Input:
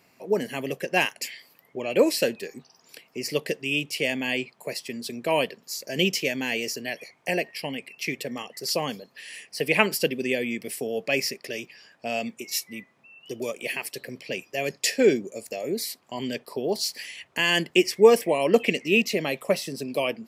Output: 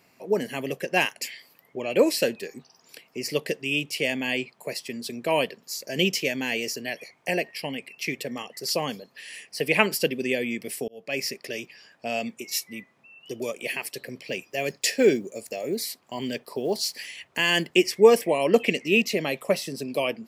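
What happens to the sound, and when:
10.88–11.34 s: fade in
14.26–17.68 s: block-companded coder 7-bit

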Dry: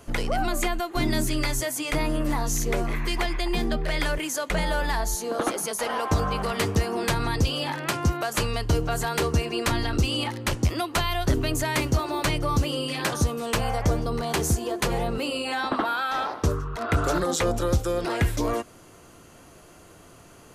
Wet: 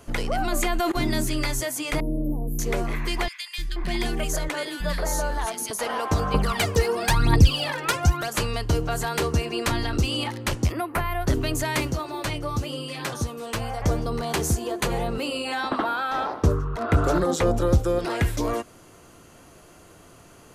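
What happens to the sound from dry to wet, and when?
0.52–0.92 s: level flattener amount 100%
2.00–2.59 s: inverse Chebyshev band-stop 2–4.7 kHz, stop band 80 dB
3.28–5.71 s: three bands offset in time highs, lows, mids 300/480 ms, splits 240/1700 Hz
6.34–8.28 s: phaser 1 Hz, delay 2.4 ms, feedback 73%
10.72–11.27 s: high-order bell 4.9 kHz -15 dB
11.92–13.82 s: flange 1 Hz, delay 5.6 ms, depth 5.1 ms, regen +52%
14.63–15.09 s: band-stop 5.3 kHz
15.84–17.99 s: tilt shelf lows +4 dB, about 1.3 kHz

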